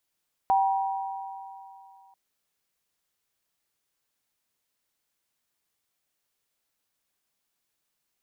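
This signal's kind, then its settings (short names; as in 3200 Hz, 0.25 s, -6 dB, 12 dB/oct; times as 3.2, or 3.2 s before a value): sine partials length 1.64 s, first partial 779 Hz, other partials 958 Hz, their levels -6 dB, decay 2.57 s, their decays 2.93 s, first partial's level -18.5 dB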